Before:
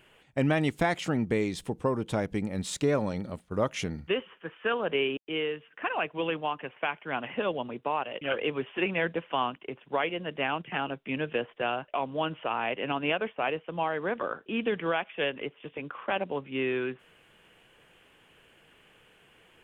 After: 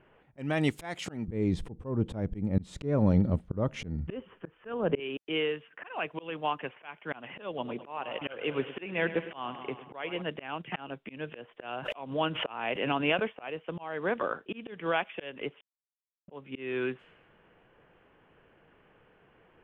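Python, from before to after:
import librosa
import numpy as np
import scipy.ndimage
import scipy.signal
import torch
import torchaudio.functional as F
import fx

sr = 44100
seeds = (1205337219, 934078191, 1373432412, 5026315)

y = fx.tilt_eq(x, sr, slope=-4.0, at=(1.28, 5.0))
y = fx.echo_bbd(y, sr, ms=105, stages=4096, feedback_pct=62, wet_db=-15.5, at=(7.47, 10.22))
y = fx.pre_swell(y, sr, db_per_s=86.0, at=(11.67, 13.19), fade=0.02)
y = fx.edit(y, sr, fx.silence(start_s=15.61, length_s=0.67), tone=tone)
y = fx.env_lowpass(y, sr, base_hz=1300.0, full_db=-27.5)
y = fx.auto_swell(y, sr, attack_ms=294.0)
y = y * librosa.db_to_amplitude(1.0)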